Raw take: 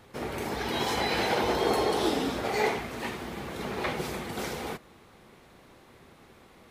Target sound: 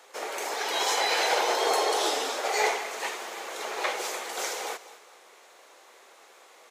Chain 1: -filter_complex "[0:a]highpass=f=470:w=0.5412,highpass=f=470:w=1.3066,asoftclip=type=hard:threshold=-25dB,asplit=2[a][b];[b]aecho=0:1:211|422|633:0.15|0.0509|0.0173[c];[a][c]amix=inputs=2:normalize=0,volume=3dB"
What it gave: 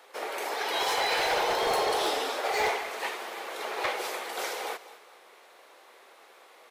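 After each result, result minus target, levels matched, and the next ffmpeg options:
hard clip: distortion +18 dB; 8000 Hz band -5.0 dB
-filter_complex "[0:a]highpass=f=470:w=0.5412,highpass=f=470:w=1.3066,asoftclip=type=hard:threshold=-18dB,asplit=2[a][b];[b]aecho=0:1:211|422|633:0.15|0.0509|0.0173[c];[a][c]amix=inputs=2:normalize=0,volume=3dB"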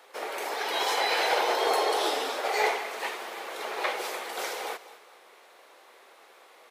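8000 Hz band -6.0 dB
-filter_complex "[0:a]highpass=f=470:w=0.5412,highpass=f=470:w=1.3066,equalizer=f=6.8k:t=o:w=0.67:g=9,asoftclip=type=hard:threshold=-18dB,asplit=2[a][b];[b]aecho=0:1:211|422|633:0.15|0.0509|0.0173[c];[a][c]amix=inputs=2:normalize=0,volume=3dB"

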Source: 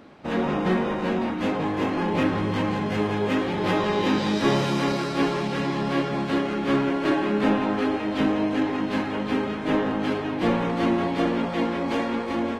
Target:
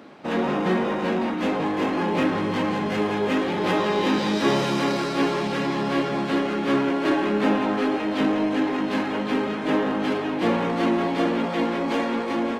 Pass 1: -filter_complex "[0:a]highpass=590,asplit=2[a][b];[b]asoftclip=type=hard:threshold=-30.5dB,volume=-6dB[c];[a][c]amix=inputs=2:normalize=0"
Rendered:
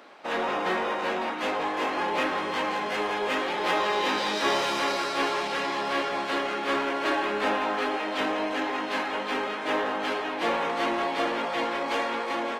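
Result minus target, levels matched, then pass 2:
125 Hz band -13.0 dB
-filter_complex "[0:a]highpass=170,asplit=2[a][b];[b]asoftclip=type=hard:threshold=-30.5dB,volume=-6dB[c];[a][c]amix=inputs=2:normalize=0"

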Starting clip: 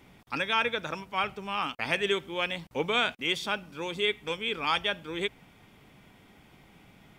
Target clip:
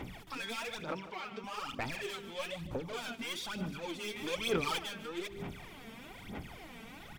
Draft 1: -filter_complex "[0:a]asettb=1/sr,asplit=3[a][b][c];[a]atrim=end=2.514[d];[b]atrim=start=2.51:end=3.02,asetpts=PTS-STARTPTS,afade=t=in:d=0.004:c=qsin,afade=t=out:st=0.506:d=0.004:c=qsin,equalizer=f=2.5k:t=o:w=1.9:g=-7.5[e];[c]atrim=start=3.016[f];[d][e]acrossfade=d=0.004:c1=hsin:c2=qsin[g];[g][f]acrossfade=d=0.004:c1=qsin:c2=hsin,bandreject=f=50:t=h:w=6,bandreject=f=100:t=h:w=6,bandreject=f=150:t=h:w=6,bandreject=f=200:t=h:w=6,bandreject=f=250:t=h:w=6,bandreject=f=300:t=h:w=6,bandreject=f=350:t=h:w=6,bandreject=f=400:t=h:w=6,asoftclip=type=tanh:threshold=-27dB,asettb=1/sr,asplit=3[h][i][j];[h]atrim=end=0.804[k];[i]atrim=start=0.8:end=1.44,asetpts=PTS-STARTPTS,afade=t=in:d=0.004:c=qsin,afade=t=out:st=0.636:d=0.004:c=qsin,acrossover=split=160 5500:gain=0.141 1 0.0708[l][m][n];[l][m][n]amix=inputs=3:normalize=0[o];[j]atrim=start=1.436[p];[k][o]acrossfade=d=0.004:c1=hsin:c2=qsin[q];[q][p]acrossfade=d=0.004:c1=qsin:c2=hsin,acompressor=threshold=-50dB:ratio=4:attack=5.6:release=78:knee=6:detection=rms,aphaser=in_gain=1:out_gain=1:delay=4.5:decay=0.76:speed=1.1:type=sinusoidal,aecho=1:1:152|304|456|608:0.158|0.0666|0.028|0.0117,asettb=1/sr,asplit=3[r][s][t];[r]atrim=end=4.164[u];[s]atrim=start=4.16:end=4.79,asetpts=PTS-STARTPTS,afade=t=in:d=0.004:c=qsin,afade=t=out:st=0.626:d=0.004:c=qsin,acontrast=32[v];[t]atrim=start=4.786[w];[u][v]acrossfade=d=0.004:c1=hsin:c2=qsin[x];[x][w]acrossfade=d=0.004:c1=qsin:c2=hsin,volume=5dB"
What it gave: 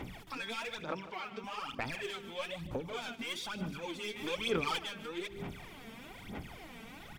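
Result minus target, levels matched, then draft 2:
soft clip: distortion -4 dB
-filter_complex "[0:a]asettb=1/sr,asplit=3[a][b][c];[a]atrim=end=2.514[d];[b]atrim=start=2.51:end=3.02,asetpts=PTS-STARTPTS,afade=t=in:d=0.004:c=qsin,afade=t=out:st=0.506:d=0.004:c=qsin,equalizer=f=2.5k:t=o:w=1.9:g=-7.5[e];[c]atrim=start=3.016[f];[d][e]acrossfade=d=0.004:c1=hsin:c2=qsin[g];[g][f]acrossfade=d=0.004:c1=qsin:c2=hsin,bandreject=f=50:t=h:w=6,bandreject=f=100:t=h:w=6,bandreject=f=150:t=h:w=6,bandreject=f=200:t=h:w=6,bandreject=f=250:t=h:w=6,bandreject=f=300:t=h:w=6,bandreject=f=350:t=h:w=6,bandreject=f=400:t=h:w=6,asoftclip=type=tanh:threshold=-34dB,asettb=1/sr,asplit=3[h][i][j];[h]atrim=end=0.804[k];[i]atrim=start=0.8:end=1.44,asetpts=PTS-STARTPTS,afade=t=in:d=0.004:c=qsin,afade=t=out:st=0.636:d=0.004:c=qsin,acrossover=split=160 5500:gain=0.141 1 0.0708[l][m][n];[l][m][n]amix=inputs=3:normalize=0[o];[j]atrim=start=1.436[p];[k][o]acrossfade=d=0.004:c1=hsin:c2=qsin[q];[q][p]acrossfade=d=0.004:c1=qsin:c2=hsin,acompressor=threshold=-50dB:ratio=4:attack=5.6:release=78:knee=6:detection=rms,aphaser=in_gain=1:out_gain=1:delay=4.5:decay=0.76:speed=1.1:type=sinusoidal,aecho=1:1:152|304|456|608:0.158|0.0666|0.028|0.0117,asettb=1/sr,asplit=3[r][s][t];[r]atrim=end=4.164[u];[s]atrim=start=4.16:end=4.79,asetpts=PTS-STARTPTS,afade=t=in:d=0.004:c=qsin,afade=t=out:st=0.626:d=0.004:c=qsin,acontrast=32[v];[t]atrim=start=4.786[w];[u][v]acrossfade=d=0.004:c1=hsin:c2=qsin[x];[x][w]acrossfade=d=0.004:c1=qsin:c2=hsin,volume=5dB"

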